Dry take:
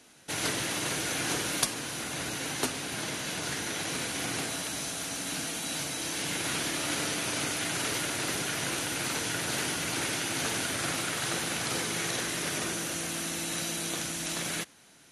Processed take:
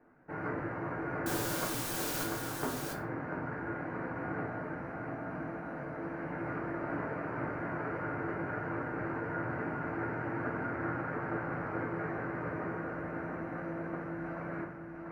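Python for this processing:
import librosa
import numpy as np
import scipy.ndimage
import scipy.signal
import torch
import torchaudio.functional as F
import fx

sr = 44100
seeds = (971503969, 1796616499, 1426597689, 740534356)

y = scipy.signal.sosfilt(scipy.signal.cheby2(4, 40, 3200.0, 'lowpass', fs=sr, output='sos'), x)
y = fx.quant_dither(y, sr, seeds[0], bits=6, dither='triangular', at=(1.26, 2.24))
y = y + 10.0 ** (-5.0 / 20.0) * np.pad(y, (int(692 * sr / 1000.0), 0))[:len(y)]
y = fx.room_shoebox(y, sr, seeds[1], volume_m3=33.0, walls='mixed', distance_m=0.51)
y = y * librosa.db_to_amplitude(-5.0)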